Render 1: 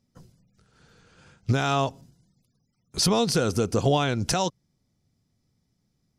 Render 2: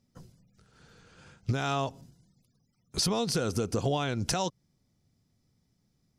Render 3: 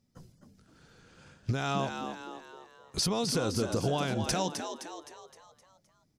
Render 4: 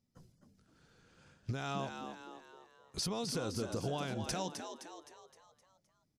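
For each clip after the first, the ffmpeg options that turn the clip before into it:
-af "acompressor=threshold=-27dB:ratio=3"
-filter_complex "[0:a]asplit=7[a][b][c][d][e][f][g];[b]adelay=259,afreqshift=76,volume=-7dB[h];[c]adelay=518,afreqshift=152,volume=-13.4dB[i];[d]adelay=777,afreqshift=228,volume=-19.8dB[j];[e]adelay=1036,afreqshift=304,volume=-26.1dB[k];[f]adelay=1295,afreqshift=380,volume=-32.5dB[l];[g]adelay=1554,afreqshift=456,volume=-38.9dB[m];[a][h][i][j][k][l][m]amix=inputs=7:normalize=0,volume=-1.5dB"
-af "aresample=32000,aresample=44100,volume=-7.5dB"

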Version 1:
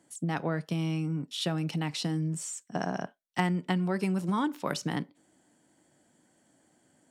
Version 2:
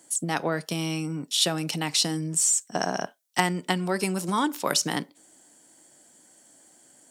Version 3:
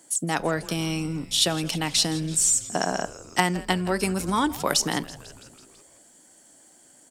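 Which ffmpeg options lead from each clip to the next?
-af "bass=f=250:g=-9,treble=f=4k:g=11,volume=6dB"
-filter_complex "[0:a]asplit=7[a][b][c][d][e][f][g];[b]adelay=165,afreqshift=-140,volume=-17.5dB[h];[c]adelay=330,afreqshift=-280,volume=-21.5dB[i];[d]adelay=495,afreqshift=-420,volume=-25.5dB[j];[e]adelay=660,afreqshift=-560,volume=-29.5dB[k];[f]adelay=825,afreqshift=-700,volume=-33.6dB[l];[g]adelay=990,afreqshift=-840,volume=-37.6dB[m];[a][h][i][j][k][l][m]amix=inputs=7:normalize=0,volume=1.5dB"

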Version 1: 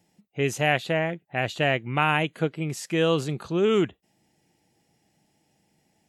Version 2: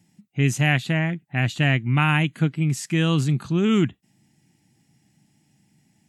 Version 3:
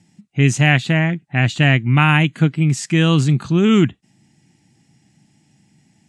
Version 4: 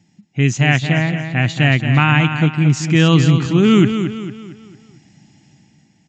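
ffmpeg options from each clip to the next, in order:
-af "equalizer=f=125:t=o:w=1:g=10,equalizer=f=250:t=o:w=1:g=8,equalizer=f=500:t=o:w=1:g=-11,equalizer=f=2k:t=o:w=1:g=3,equalizer=f=8k:t=o:w=1:g=5"
-af "lowpass=f=9.1k:w=0.5412,lowpass=f=9.1k:w=1.3066,volume=6dB"
-filter_complex "[0:a]dynaudnorm=f=110:g=11:m=8dB,asplit=2[a][b];[b]aecho=0:1:226|452|678|904|1130:0.376|0.162|0.0695|0.0299|0.0128[c];[a][c]amix=inputs=2:normalize=0,aresample=16000,aresample=44100,volume=-1dB"

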